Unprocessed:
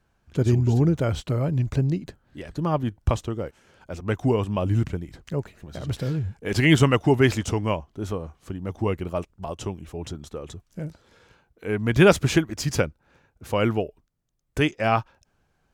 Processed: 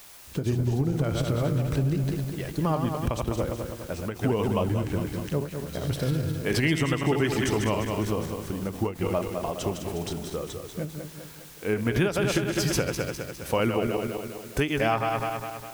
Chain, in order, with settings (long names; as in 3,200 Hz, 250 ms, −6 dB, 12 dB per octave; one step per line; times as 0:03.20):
feedback delay that plays each chunk backwards 102 ms, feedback 70%, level −6 dB
high-shelf EQ 10,000 Hz +6.5 dB
notch filter 7,000 Hz, Q 11
in parallel at −12 dB: bit-depth reduction 6 bits, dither triangular
on the sum: downward compressor 6 to 1, threshold −20 dBFS, peak gain reduction 12 dB
parametric band 93 Hz −4 dB 0.97 octaves
every ending faded ahead of time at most 170 dB per second